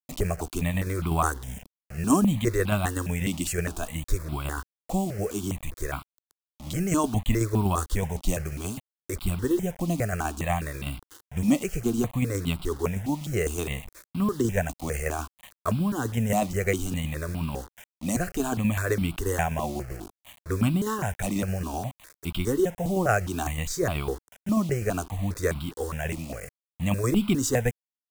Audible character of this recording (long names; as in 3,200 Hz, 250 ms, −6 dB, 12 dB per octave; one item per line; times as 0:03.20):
tremolo saw down 8.1 Hz, depth 45%
a quantiser's noise floor 8 bits, dither none
notches that jump at a steady rate 4.9 Hz 430–1,800 Hz